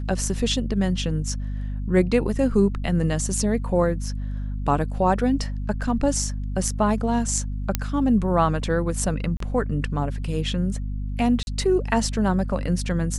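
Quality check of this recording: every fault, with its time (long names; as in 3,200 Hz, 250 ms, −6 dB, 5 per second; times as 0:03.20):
mains hum 50 Hz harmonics 5 −28 dBFS
0:07.75: click −5 dBFS
0:09.37–0:09.40: drop-out 33 ms
0:11.43–0:11.47: drop-out 41 ms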